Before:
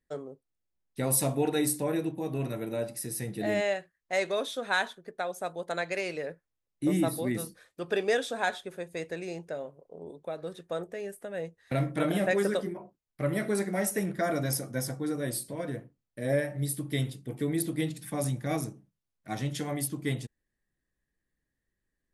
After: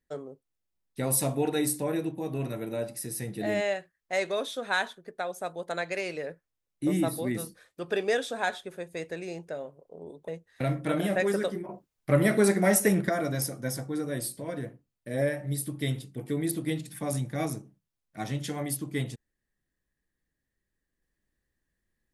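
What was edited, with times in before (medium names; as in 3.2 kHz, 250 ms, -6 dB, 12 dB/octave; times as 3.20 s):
10.28–11.39 s: delete
12.80–14.20 s: gain +7 dB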